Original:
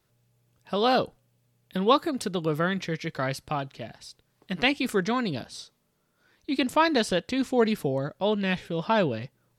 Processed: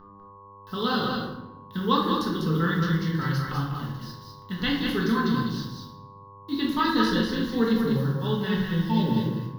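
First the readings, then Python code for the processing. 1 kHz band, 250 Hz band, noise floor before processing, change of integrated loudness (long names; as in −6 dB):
−1.0 dB, +4.0 dB, −72 dBFS, +1.0 dB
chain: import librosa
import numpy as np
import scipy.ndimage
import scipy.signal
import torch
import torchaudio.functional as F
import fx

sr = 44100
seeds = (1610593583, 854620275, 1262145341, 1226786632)

y = fx.spec_repair(x, sr, seeds[0], start_s=8.63, length_s=0.58, low_hz=950.0, high_hz=2100.0, source='before')
y = fx.low_shelf(y, sr, hz=67.0, db=8.0)
y = fx.quant_dither(y, sr, seeds[1], bits=8, dither='none')
y = fx.dmg_buzz(y, sr, base_hz=100.0, harmonics=12, level_db=-45.0, tilt_db=0, odd_only=False)
y = fx.fixed_phaser(y, sr, hz=2400.0, stages=6)
y = y + 10.0 ** (-4.5 / 20.0) * np.pad(y, (int(198 * sr / 1000.0), 0))[:len(y)]
y = fx.room_shoebox(y, sr, seeds[2], volume_m3=250.0, walls='mixed', distance_m=1.5)
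y = y * 10.0 ** (-3.0 / 20.0)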